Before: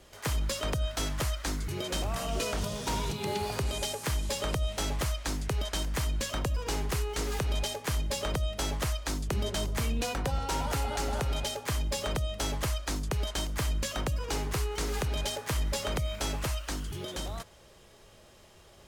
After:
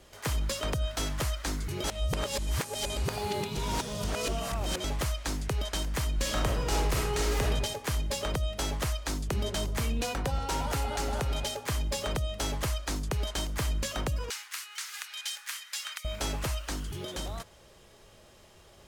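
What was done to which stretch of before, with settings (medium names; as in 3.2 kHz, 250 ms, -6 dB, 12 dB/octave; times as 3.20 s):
1.84–4.84 s: reverse
6.15–7.44 s: reverb throw, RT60 0.83 s, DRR -2 dB
14.30–16.05 s: high-pass 1.4 kHz 24 dB/octave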